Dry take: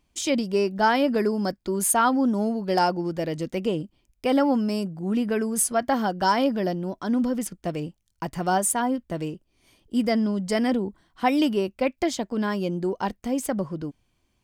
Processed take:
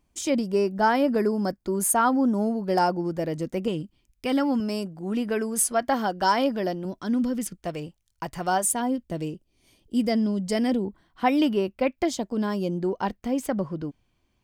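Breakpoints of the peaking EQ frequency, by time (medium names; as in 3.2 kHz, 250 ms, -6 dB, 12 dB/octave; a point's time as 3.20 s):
peaking EQ -6.5 dB 1.5 oct
3.4 kHz
from 3.68 s 630 Hz
from 4.60 s 130 Hz
from 6.85 s 780 Hz
from 7.58 s 230 Hz
from 8.64 s 1.3 kHz
from 10.85 s 8 kHz
from 12.05 s 1.9 kHz
from 12.78 s 9.5 kHz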